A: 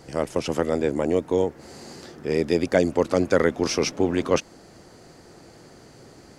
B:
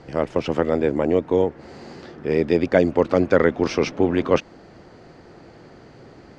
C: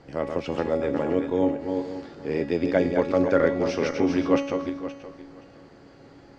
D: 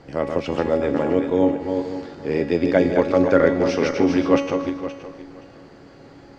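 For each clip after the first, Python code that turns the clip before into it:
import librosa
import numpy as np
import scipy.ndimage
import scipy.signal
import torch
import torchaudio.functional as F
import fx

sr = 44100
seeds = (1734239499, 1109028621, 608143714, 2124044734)

y1 = scipy.signal.sosfilt(scipy.signal.butter(2, 3200.0, 'lowpass', fs=sr, output='sos'), x)
y1 = y1 * librosa.db_to_amplitude(3.0)
y2 = fx.reverse_delay_fb(y1, sr, ms=261, feedback_pct=44, wet_db=-5.5)
y2 = fx.comb_fb(y2, sr, f0_hz=280.0, decay_s=0.65, harmonics='all', damping=0.0, mix_pct=80)
y2 = y2 * librosa.db_to_amplitude(6.5)
y3 = fx.echo_feedback(y2, sr, ms=153, feedback_pct=56, wet_db=-16.5)
y3 = y3 * librosa.db_to_amplitude(4.5)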